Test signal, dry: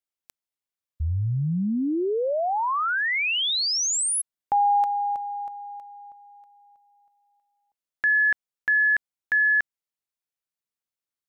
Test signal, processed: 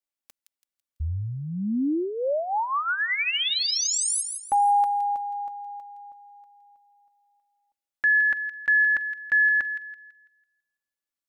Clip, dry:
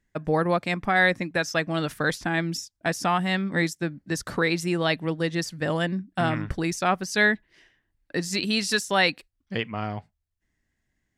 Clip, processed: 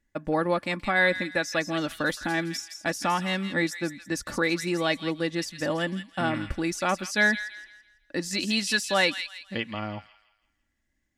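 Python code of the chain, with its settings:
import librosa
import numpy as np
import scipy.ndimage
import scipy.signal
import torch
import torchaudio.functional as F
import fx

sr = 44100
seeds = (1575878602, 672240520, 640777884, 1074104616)

p1 = x + 0.48 * np.pad(x, (int(3.5 * sr / 1000.0), 0))[:len(x)]
p2 = p1 + fx.echo_wet_highpass(p1, sr, ms=166, feedback_pct=35, hz=2200.0, wet_db=-7.0, dry=0)
y = p2 * librosa.db_to_amplitude(-2.5)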